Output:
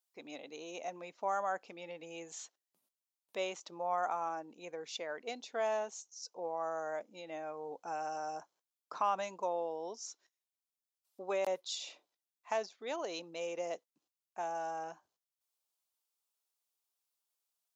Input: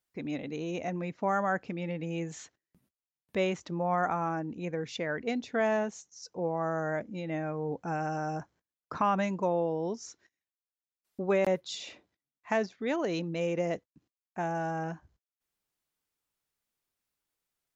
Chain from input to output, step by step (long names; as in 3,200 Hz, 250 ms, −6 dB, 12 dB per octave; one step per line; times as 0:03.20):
high-pass filter 760 Hz 12 dB per octave
parametric band 1,800 Hz −12 dB 1.1 octaves
level +1 dB